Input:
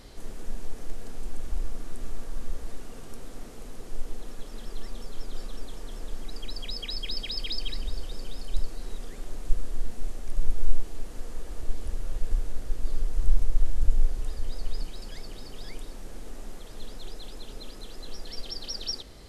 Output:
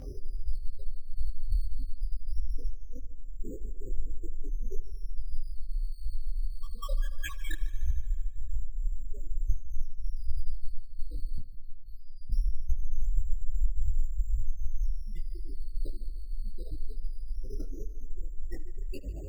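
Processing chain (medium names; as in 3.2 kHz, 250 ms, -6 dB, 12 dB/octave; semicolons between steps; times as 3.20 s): Bessel low-pass 2.2 kHz, order 4; hum notches 60/120/180/240 Hz; spectral gate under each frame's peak -15 dB strong; compression 5:1, threshold -26 dBFS, peak gain reduction 16 dB; comb of notches 230 Hz; decimation with a swept rate 8×, swing 60% 0.2 Hz; 11.38–12.30 s: feedback comb 270 Hz, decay 0.32 s, harmonics all, mix 100%; multi-head delay 75 ms, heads first and second, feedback 66%, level -20.5 dB; detune thickener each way 57 cents; trim +16 dB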